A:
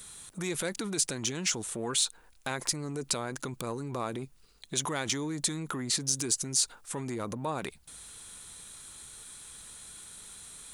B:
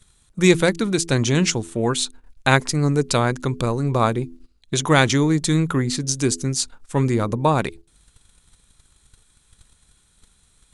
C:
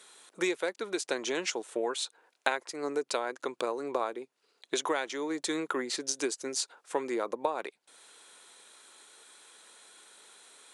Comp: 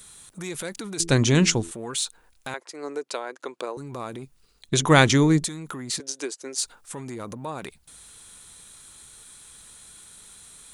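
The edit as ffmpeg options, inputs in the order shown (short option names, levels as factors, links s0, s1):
-filter_complex "[1:a]asplit=2[s0][s1];[2:a]asplit=2[s2][s3];[0:a]asplit=5[s4][s5][s6][s7][s8];[s4]atrim=end=1.002[s9];[s0]atrim=start=0.998:end=1.712[s10];[s5]atrim=start=1.708:end=2.542[s11];[s2]atrim=start=2.538:end=3.772[s12];[s6]atrim=start=3.768:end=4.692[s13];[s1]atrim=start=4.688:end=5.442[s14];[s7]atrim=start=5.438:end=6.002[s15];[s3]atrim=start=5.998:end=6.582[s16];[s8]atrim=start=6.578[s17];[s9][s10]acrossfade=d=0.004:c1=hsin:c2=hsin[s18];[s18][s11]acrossfade=d=0.004:c1=hsin:c2=hsin[s19];[s19][s12]acrossfade=d=0.004:c1=hsin:c2=hsin[s20];[s20][s13]acrossfade=d=0.004:c1=hsin:c2=hsin[s21];[s21][s14]acrossfade=d=0.004:c1=hsin:c2=hsin[s22];[s22][s15]acrossfade=d=0.004:c1=hsin:c2=hsin[s23];[s23][s16]acrossfade=d=0.004:c1=hsin:c2=hsin[s24];[s24][s17]acrossfade=d=0.004:c1=hsin:c2=hsin"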